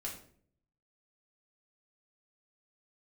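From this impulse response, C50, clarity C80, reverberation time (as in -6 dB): 7.0 dB, 11.0 dB, 0.55 s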